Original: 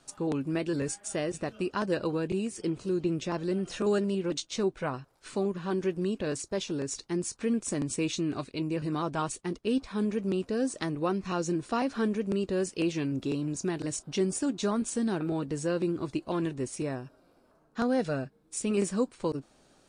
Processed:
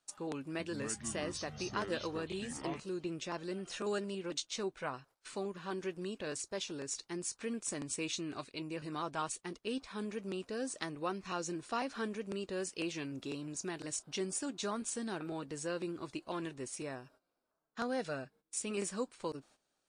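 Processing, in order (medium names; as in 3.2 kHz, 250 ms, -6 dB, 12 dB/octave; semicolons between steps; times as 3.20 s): gate -53 dBFS, range -14 dB; bass shelf 490 Hz -11 dB; 0.39–2.80 s: ever faster or slower copies 205 ms, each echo -7 st, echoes 3, each echo -6 dB; trim -3 dB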